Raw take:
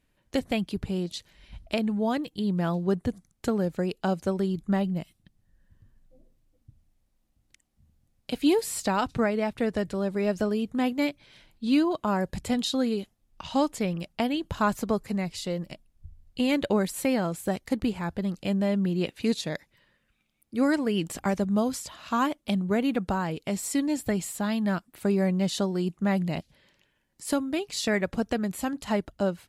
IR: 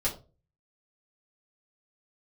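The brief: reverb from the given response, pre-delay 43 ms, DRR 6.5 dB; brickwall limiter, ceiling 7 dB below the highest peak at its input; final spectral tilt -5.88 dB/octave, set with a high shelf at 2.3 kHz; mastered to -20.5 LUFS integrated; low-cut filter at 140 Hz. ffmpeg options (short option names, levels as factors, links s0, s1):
-filter_complex "[0:a]highpass=140,highshelf=f=2300:g=-3.5,alimiter=limit=0.106:level=0:latency=1,asplit=2[s0][s1];[1:a]atrim=start_sample=2205,adelay=43[s2];[s1][s2]afir=irnorm=-1:irlink=0,volume=0.224[s3];[s0][s3]amix=inputs=2:normalize=0,volume=2.82"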